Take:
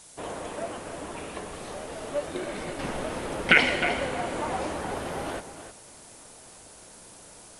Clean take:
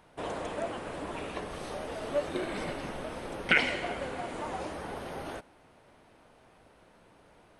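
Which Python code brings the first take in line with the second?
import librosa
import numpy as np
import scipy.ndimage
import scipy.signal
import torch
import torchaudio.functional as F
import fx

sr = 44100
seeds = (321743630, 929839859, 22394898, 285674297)

y = fx.noise_reduce(x, sr, print_start_s=6.32, print_end_s=6.82, reduce_db=11.0)
y = fx.fix_echo_inverse(y, sr, delay_ms=310, level_db=-11.0)
y = fx.fix_level(y, sr, at_s=2.79, step_db=-6.0)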